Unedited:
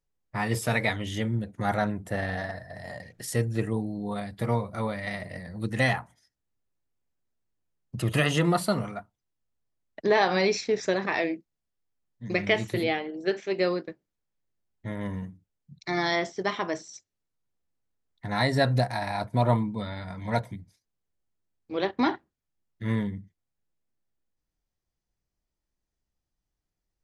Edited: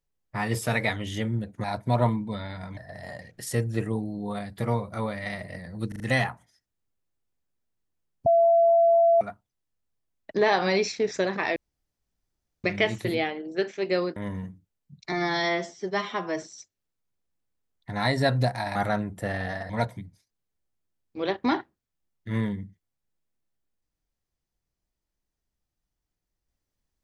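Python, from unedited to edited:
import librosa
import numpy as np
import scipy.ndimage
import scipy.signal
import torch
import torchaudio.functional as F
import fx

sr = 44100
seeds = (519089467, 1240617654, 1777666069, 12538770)

y = fx.edit(x, sr, fx.swap(start_s=1.64, length_s=0.94, other_s=19.11, other_length_s=1.13),
    fx.stutter(start_s=5.69, slice_s=0.04, count=4),
    fx.bleep(start_s=7.95, length_s=0.95, hz=674.0, db=-15.5),
    fx.room_tone_fill(start_s=11.25, length_s=1.08),
    fx.cut(start_s=13.85, length_s=1.1),
    fx.stretch_span(start_s=15.91, length_s=0.87, factor=1.5), tone=tone)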